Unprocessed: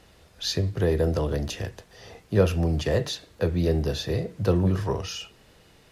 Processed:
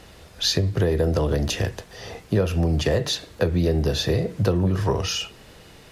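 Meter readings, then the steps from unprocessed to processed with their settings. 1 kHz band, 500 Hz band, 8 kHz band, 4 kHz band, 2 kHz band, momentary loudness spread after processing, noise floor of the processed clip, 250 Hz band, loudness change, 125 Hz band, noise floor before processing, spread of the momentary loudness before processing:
+3.5 dB, +2.0 dB, +7.0 dB, +7.0 dB, +4.5 dB, 7 LU, -48 dBFS, +2.5 dB, +3.0 dB, +3.0 dB, -56 dBFS, 10 LU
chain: compression 6:1, threshold -26 dBFS, peak gain reduction 12 dB; trim +8.5 dB

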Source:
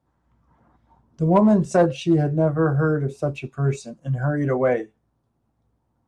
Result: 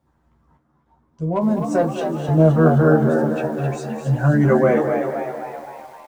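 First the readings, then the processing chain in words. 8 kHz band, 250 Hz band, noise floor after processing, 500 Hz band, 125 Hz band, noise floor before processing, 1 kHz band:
no reading, +2.5 dB, -64 dBFS, +3.5 dB, +4.0 dB, -71 dBFS, +3.0 dB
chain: random-step tremolo, depth 85%; doubling 13 ms -5 dB; frequency-shifting echo 260 ms, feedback 55%, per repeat +80 Hz, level -7 dB; bit-crushed delay 207 ms, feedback 55%, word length 8-bit, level -11 dB; trim +4.5 dB

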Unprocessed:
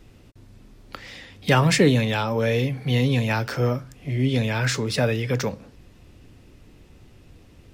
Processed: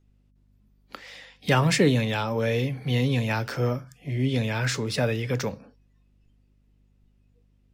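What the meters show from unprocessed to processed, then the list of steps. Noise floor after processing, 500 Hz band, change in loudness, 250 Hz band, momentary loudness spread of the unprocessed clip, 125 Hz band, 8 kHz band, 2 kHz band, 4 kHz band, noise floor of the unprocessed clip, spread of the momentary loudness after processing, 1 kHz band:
-63 dBFS, -3.0 dB, -3.0 dB, -3.0 dB, 15 LU, -3.0 dB, -3.0 dB, -3.0 dB, -3.0 dB, -51 dBFS, 15 LU, -3.0 dB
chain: spectral noise reduction 20 dB; hum 50 Hz, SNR 35 dB; trim -3 dB

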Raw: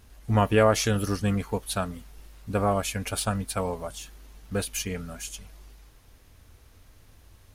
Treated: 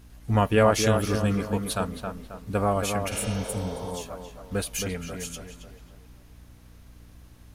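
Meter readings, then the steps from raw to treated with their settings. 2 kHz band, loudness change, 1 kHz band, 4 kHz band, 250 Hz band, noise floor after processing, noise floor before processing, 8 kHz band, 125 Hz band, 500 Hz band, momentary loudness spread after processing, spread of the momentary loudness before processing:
+0.5 dB, +0.5 dB, +1.0 dB, 0.0 dB, +1.5 dB, -51 dBFS, -56 dBFS, 0.0 dB, +1.0 dB, +1.0 dB, 16 LU, 17 LU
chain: tape echo 271 ms, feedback 47%, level -4 dB, low-pass 1.9 kHz; spectral replace 3.14–3.88 s, 360–6500 Hz both; hum 60 Hz, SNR 24 dB

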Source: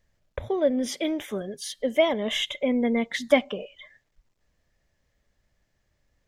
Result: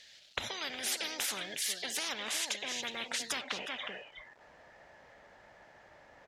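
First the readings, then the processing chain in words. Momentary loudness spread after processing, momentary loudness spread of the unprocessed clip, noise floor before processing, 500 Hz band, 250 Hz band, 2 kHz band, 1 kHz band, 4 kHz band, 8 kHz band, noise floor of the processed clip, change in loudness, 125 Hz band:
9 LU, 14 LU, -74 dBFS, -21.5 dB, -23.0 dB, -4.5 dB, -8.5 dB, -2.5 dB, +4.5 dB, -59 dBFS, -9.5 dB, no reading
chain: band-pass sweep 3.8 kHz -> 980 Hz, 2.67–4.03 s; delay 364 ms -21.5 dB; in parallel at +1.5 dB: compression, threshold -39 dBFS, peak gain reduction 14 dB; on the sum: peaking EQ 1.1 kHz -11 dB 0.35 oct; spectrum-flattening compressor 10:1

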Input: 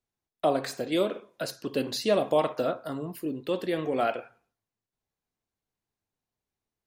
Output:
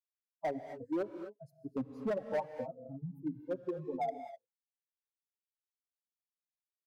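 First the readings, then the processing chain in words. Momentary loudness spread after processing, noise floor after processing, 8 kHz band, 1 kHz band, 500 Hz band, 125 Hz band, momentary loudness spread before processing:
11 LU, under -85 dBFS, under -25 dB, -9.5 dB, -11.0 dB, -7.5 dB, 10 LU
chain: expander on every frequency bin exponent 3; elliptic low-pass 920 Hz, stop band 40 dB; band-stop 500 Hz, Q 12; reverb removal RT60 0.98 s; compression 2.5:1, threshold -33 dBFS, peak gain reduction 7 dB; hard clipper -32 dBFS, distortion -13 dB; gated-style reverb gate 280 ms rising, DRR 9 dB; tape noise reduction on one side only encoder only; trim +2.5 dB

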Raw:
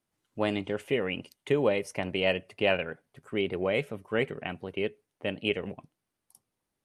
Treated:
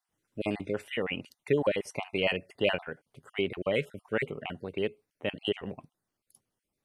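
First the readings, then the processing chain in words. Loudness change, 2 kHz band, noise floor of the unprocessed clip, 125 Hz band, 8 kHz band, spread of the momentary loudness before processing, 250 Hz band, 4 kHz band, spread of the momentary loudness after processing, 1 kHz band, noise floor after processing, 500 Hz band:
-2.0 dB, -1.5 dB, -85 dBFS, -2.0 dB, no reading, 10 LU, -2.0 dB, -0.5 dB, 10 LU, -2.5 dB, under -85 dBFS, -2.0 dB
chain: random holes in the spectrogram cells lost 29%

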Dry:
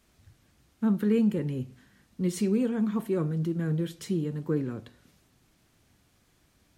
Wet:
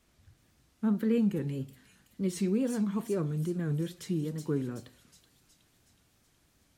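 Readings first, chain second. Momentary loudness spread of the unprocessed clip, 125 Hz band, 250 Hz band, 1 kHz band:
9 LU, -2.5 dB, -3.0 dB, -3.0 dB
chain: feedback echo behind a high-pass 371 ms, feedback 58%, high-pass 4.6 kHz, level -3 dB; wow and flutter 100 cents; trim -3 dB

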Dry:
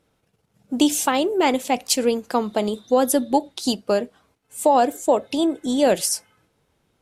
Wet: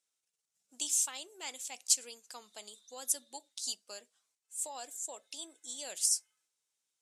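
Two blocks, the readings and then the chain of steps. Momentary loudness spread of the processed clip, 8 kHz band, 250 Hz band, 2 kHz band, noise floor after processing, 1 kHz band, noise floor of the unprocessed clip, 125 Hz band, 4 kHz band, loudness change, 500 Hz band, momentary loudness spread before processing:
19 LU, -4.5 dB, -38.0 dB, -20.0 dB, under -85 dBFS, -28.0 dB, -69 dBFS, no reading, -11.5 dB, -13.5 dB, -32.0 dB, 7 LU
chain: band-pass filter 7.4 kHz, Q 2; trim -2.5 dB

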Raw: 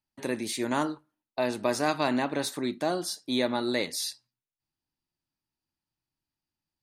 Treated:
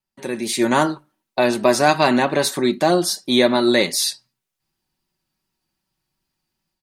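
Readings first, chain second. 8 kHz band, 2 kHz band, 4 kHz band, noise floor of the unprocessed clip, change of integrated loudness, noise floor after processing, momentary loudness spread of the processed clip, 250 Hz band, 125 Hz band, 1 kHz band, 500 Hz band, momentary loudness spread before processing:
+11.5 dB, +11.5 dB, +11.5 dB, under -85 dBFS, +11.5 dB, -82 dBFS, 8 LU, +10.5 dB, +11.0 dB, +11.5 dB, +12.0 dB, 7 LU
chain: comb 5.3 ms, depth 47%; level rider gain up to 9.5 dB; vibrato 2.6 Hz 36 cents; trim +2 dB

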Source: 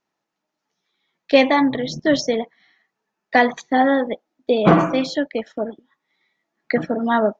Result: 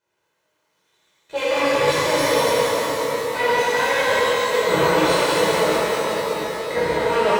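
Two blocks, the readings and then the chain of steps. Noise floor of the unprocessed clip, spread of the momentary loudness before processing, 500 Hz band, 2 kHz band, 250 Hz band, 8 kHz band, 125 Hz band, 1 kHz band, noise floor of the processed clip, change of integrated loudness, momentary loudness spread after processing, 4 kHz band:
-81 dBFS, 13 LU, +2.5 dB, +3.0 dB, -8.0 dB, no reading, -4.0 dB, +1.5 dB, -71 dBFS, 0.0 dB, 6 LU, +5.5 dB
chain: comb filter that takes the minimum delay 2 ms; reverse; compression 6:1, threshold -27 dBFS, peak gain reduction 16.5 dB; reverse; high-pass 110 Hz 12 dB/octave; peaking EQ 5 kHz -7 dB 0.27 oct; on a send: two-band feedback delay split 650 Hz, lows 691 ms, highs 183 ms, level -6 dB; on the sum: pitch-shifted reverb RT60 3.3 s, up +12 st, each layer -8 dB, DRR -11.5 dB

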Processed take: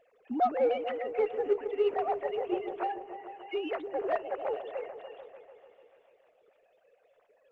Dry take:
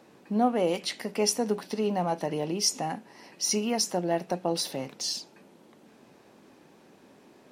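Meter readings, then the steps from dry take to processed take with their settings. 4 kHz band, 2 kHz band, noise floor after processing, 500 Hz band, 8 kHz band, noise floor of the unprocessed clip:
-18.5 dB, -3.0 dB, -68 dBFS, 0.0 dB, under -40 dB, -57 dBFS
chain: formants replaced by sine waves; delay with an opening low-pass 147 ms, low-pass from 400 Hz, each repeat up 1 oct, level -6 dB; Chebyshev shaper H 6 -43 dB, 7 -33 dB, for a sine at -12.5 dBFS; trim -3.5 dB; Opus 16 kbps 48 kHz

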